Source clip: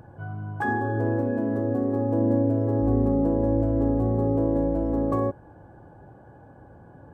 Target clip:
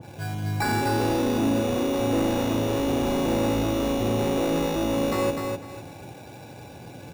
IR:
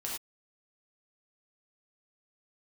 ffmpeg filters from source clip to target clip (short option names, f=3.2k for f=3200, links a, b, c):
-filter_complex "[0:a]highpass=96,acrusher=samples=14:mix=1:aa=0.000001,asoftclip=type=tanh:threshold=-26.5dB,asplit=2[a][b];[b]aecho=0:1:251|502|753:0.596|0.143|0.0343[c];[a][c]amix=inputs=2:normalize=0,adynamicequalizer=threshold=0.00447:dfrequency=1700:dqfactor=0.7:tfrequency=1700:tqfactor=0.7:attack=5:release=100:ratio=0.375:range=2.5:mode=cutabove:tftype=highshelf,volume=6dB"